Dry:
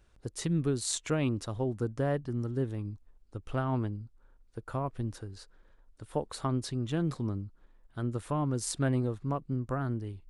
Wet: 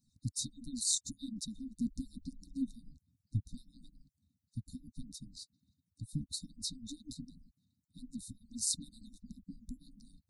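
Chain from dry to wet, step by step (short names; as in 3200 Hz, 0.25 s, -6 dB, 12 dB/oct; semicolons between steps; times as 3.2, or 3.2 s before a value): median-filter separation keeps percussive; brick-wall FIR band-stop 290–3600 Hz; 1.81–3.4 low shelf 250 Hz +6 dB; gain +3 dB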